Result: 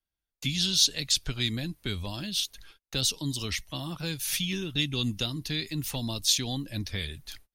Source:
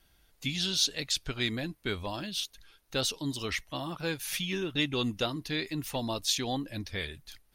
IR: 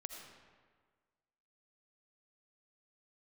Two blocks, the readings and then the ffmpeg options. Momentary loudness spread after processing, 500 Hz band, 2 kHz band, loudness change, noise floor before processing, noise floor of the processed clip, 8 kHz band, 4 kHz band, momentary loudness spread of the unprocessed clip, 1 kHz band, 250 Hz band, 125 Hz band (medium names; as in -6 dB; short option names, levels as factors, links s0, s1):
11 LU, -5.0 dB, -1.0 dB, +3.0 dB, -67 dBFS, under -85 dBFS, +6.0 dB, +4.0 dB, 8 LU, -6.0 dB, +1.0 dB, +5.0 dB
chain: -filter_complex "[0:a]agate=range=0.0251:threshold=0.00158:ratio=16:detection=peak,acrossover=split=220|3000[s0][s1][s2];[s1]acompressor=threshold=0.00447:ratio=4[s3];[s0][s3][s2]amix=inputs=3:normalize=0,volume=2"